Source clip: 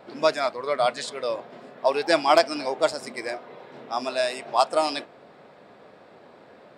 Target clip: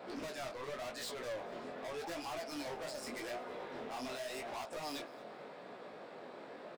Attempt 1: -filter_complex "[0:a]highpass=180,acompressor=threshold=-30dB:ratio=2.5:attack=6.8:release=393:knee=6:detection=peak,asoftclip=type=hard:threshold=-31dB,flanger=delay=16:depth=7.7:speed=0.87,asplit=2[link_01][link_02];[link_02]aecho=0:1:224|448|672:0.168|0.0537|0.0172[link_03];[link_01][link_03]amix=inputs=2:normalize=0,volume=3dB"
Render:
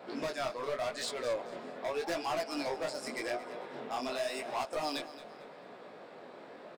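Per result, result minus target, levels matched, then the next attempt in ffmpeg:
echo-to-direct +6 dB; hard clipping: distortion −6 dB
-filter_complex "[0:a]highpass=180,acompressor=threshold=-30dB:ratio=2.5:attack=6.8:release=393:knee=6:detection=peak,asoftclip=type=hard:threshold=-31dB,flanger=delay=16:depth=7.7:speed=0.87,asplit=2[link_01][link_02];[link_02]aecho=0:1:224|448:0.0841|0.0269[link_03];[link_01][link_03]amix=inputs=2:normalize=0,volume=3dB"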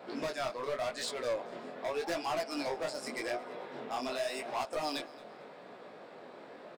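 hard clipping: distortion −6 dB
-filter_complex "[0:a]highpass=180,acompressor=threshold=-30dB:ratio=2.5:attack=6.8:release=393:knee=6:detection=peak,asoftclip=type=hard:threshold=-41dB,flanger=delay=16:depth=7.7:speed=0.87,asplit=2[link_01][link_02];[link_02]aecho=0:1:224|448:0.0841|0.0269[link_03];[link_01][link_03]amix=inputs=2:normalize=0,volume=3dB"

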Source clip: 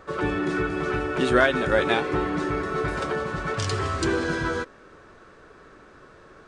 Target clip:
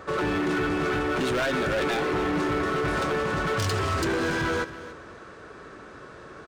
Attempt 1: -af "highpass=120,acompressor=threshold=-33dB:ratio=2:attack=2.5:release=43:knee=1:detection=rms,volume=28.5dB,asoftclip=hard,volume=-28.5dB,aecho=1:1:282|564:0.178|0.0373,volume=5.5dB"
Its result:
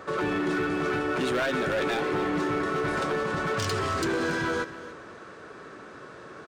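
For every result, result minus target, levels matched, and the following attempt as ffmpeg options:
downward compressor: peak gain reduction +3 dB; 125 Hz band −2.5 dB
-af "highpass=120,acompressor=threshold=-27dB:ratio=2:attack=2.5:release=43:knee=1:detection=rms,volume=28.5dB,asoftclip=hard,volume=-28.5dB,aecho=1:1:282|564:0.178|0.0373,volume=5.5dB"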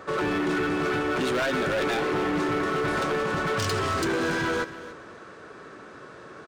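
125 Hz band −2.5 dB
-af "highpass=55,acompressor=threshold=-27dB:ratio=2:attack=2.5:release=43:knee=1:detection=rms,volume=28.5dB,asoftclip=hard,volume=-28.5dB,aecho=1:1:282|564:0.178|0.0373,volume=5.5dB"

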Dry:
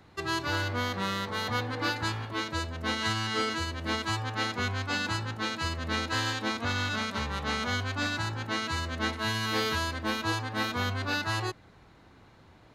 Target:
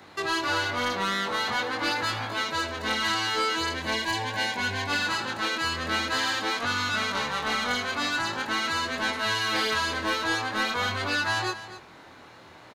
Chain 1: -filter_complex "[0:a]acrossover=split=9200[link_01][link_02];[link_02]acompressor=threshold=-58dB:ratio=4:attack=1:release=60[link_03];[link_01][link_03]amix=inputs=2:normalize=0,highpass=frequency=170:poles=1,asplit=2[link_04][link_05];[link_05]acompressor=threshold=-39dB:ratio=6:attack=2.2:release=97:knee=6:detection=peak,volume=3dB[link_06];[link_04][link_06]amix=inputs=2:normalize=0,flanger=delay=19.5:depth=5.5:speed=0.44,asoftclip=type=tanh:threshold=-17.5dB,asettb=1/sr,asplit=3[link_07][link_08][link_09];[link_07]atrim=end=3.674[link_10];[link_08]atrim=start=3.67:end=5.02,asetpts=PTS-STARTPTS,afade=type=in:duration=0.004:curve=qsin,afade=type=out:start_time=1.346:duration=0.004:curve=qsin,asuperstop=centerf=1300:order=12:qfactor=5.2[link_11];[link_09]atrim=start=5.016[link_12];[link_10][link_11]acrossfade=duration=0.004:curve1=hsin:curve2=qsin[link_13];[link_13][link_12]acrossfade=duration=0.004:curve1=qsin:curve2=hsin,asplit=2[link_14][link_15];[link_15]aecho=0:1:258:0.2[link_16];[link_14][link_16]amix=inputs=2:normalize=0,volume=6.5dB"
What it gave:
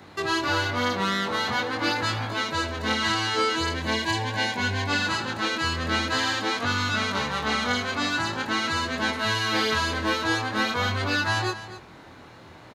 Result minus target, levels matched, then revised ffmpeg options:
soft clipping: distortion −11 dB; 125 Hz band +6.0 dB
-filter_complex "[0:a]acrossover=split=9200[link_01][link_02];[link_02]acompressor=threshold=-58dB:ratio=4:attack=1:release=60[link_03];[link_01][link_03]amix=inputs=2:normalize=0,highpass=frequency=470:poles=1,asplit=2[link_04][link_05];[link_05]acompressor=threshold=-39dB:ratio=6:attack=2.2:release=97:knee=6:detection=peak,volume=3dB[link_06];[link_04][link_06]amix=inputs=2:normalize=0,flanger=delay=19.5:depth=5.5:speed=0.44,asoftclip=type=tanh:threshold=-25dB,asettb=1/sr,asplit=3[link_07][link_08][link_09];[link_07]atrim=end=3.674[link_10];[link_08]atrim=start=3.67:end=5.02,asetpts=PTS-STARTPTS,afade=type=in:duration=0.004:curve=qsin,afade=type=out:start_time=1.346:duration=0.004:curve=qsin,asuperstop=centerf=1300:order=12:qfactor=5.2[link_11];[link_09]atrim=start=5.016[link_12];[link_10][link_11]acrossfade=duration=0.004:curve1=hsin:curve2=qsin[link_13];[link_13][link_12]acrossfade=duration=0.004:curve1=qsin:curve2=hsin,asplit=2[link_14][link_15];[link_15]aecho=0:1:258:0.2[link_16];[link_14][link_16]amix=inputs=2:normalize=0,volume=6.5dB"

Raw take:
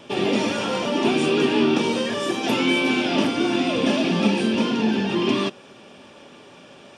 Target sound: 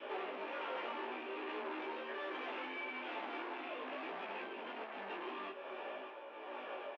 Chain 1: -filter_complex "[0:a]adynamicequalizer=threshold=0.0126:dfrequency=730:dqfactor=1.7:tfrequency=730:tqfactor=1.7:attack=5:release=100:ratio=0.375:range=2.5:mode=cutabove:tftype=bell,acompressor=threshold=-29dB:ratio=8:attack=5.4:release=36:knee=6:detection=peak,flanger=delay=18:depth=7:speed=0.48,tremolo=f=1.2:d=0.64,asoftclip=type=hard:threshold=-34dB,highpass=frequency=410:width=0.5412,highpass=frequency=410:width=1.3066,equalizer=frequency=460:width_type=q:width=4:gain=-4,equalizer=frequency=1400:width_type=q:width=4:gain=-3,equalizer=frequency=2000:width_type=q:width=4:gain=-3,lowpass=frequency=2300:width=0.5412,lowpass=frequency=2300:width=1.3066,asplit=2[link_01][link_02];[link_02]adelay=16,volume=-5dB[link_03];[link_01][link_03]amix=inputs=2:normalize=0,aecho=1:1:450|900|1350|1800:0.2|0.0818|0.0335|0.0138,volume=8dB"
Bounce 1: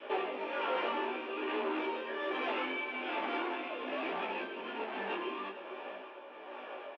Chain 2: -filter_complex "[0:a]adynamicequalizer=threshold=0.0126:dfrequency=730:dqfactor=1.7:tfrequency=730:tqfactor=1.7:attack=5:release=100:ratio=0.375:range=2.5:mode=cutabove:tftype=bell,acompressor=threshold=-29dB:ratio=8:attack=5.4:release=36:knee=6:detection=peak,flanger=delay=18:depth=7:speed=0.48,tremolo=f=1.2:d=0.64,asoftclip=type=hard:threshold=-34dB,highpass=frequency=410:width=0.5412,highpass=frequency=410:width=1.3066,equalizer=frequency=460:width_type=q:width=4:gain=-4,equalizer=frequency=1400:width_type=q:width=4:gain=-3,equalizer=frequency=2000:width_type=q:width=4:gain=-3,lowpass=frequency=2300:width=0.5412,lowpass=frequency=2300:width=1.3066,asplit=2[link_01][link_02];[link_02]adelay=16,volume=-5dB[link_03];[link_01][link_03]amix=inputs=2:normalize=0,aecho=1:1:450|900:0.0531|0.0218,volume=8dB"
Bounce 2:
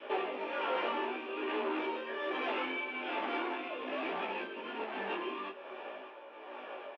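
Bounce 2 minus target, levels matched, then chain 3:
hard clipping: distortion −7 dB
-filter_complex "[0:a]adynamicequalizer=threshold=0.0126:dfrequency=730:dqfactor=1.7:tfrequency=730:tqfactor=1.7:attack=5:release=100:ratio=0.375:range=2.5:mode=cutabove:tftype=bell,acompressor=threshold=-29dB:ratio=8:attack=5.4:release=36:knee=6:detection=peak,flanger=delay=18:depth=7:speed=0.48,tremolo=f=1.2:d=0.64,asoftclip=type=hard:threshold=-44.5dB,highpass=frequency=410:width=0.5412,highpass=frequency=410:width=1.3066,equalizer=frequency=460:width_type=q:width=4:gain=-4,equalizer=frequency=1400:width_type=q:width=4:gain=-3,equalizer=frequency=2000:width_type=q:width=4:gain=-3,lowpass=frequency=2300:width=0.5412,lowpass=frequency=2300:width=1.3066,asplit=2[link_01][link_02];[link_02]adelay=16,volume=-5dB[link_03];[link_01][link_03]amix=inputs=2:normalize=0,aecho=1:1:450|900:0.0531|0.0218,volume=8dB"

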